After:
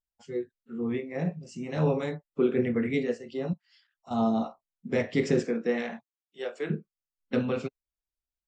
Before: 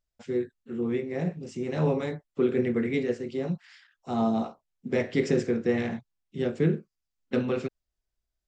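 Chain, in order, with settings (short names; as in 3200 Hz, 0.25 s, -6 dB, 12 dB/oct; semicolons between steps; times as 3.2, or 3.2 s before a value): 5.4–6.69 HPF 170 Hz -> 570 Hz 12 dB/oct; spectral noise reduction 12 dB; 3.53–4.11 compressor 5:1, threshold -47 dBFS, peak gain reduction 15.5 dB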